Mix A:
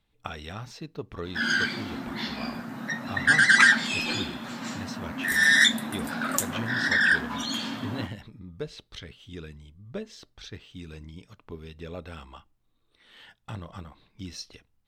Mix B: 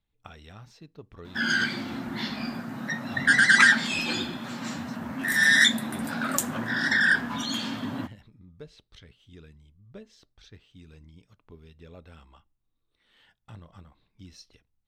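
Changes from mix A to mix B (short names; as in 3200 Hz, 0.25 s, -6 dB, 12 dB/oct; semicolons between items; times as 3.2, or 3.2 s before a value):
speech -10.5 dB; master: add low shelf 150 Hz +5 dB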